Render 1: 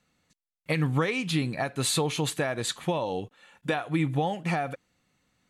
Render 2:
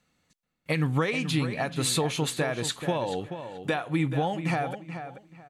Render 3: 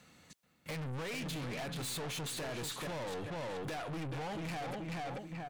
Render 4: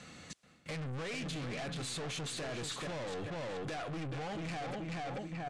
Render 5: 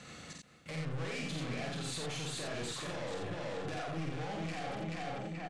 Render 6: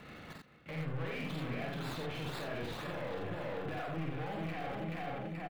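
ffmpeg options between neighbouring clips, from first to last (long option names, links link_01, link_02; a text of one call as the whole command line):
ffmpeg -i in.wav -filter_complex "[0:a]asplit=2[link_01][link_02];[link_02]adelay=432,lowpass=frequency=3500:poles=1,volume=-9.5dB,asplit=2[link_03][link_04];[link_04]adelay=432,lowpass=frequency=3500:poles=1,volume=0.24,asplit=2[link_05][link_06];[link_06]adelay=432,lowpass=frequency=3500:poles=1,volume=0.24[link_07];[link_01][link_03][link_05][link_07]amix=inputs=4:normalize=0" out.wav
ffmpeg -i in.wav -af "highpass=62,acompressor=threshold=-35dB:ratio=6,aeval=exprs='(tanh(282*val(0)+0.15)-tanh(0.15))/282':channel_layout=same,volume=10.5dB" out.wav
ffmpeg -i in.wav -af "areverse,acompressor=threshold=-48dB:ratio=10,areverse,lowpass=frequency=9000:width=0.5412,lowpass=frequency=9000:width=1.3066,bandreject=frequency=920:width=9.4,volume=9.5dB" out.wav
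ffmpeg -i in.wav -filter_complex "[0:a]alimiter=level_in=13.5dB:limit=-24dB:level=0:latency=1:release=131,volume=-13.5dB,asplit=2[link_01][link_02];[link_02]aecho=0:1:49.56|87.46:0.708|0.708[link_03];[link_01][link_03]amix=inputs=2:normalize=0" out.wav
ffmpeg -i in.wav -filter_complex "[0:a]acrossover=split=130|700|3600[link_01][link_02][link_03][link_04];[link_03]asplit=2[link_05][link_06];[link_06]adelay=36,volume=-11.5dB[link_07];[link_05][link_07]amix=inputs=2:normalize=0[link_08];[link_04]acrusher=samples=27:mix=1:aa=0.000001:lfo=1:lforange=27:lforate=2[link_09];[link_01][link_02][link_08][link_09]amix=inputs=4:normalize=0" out.wav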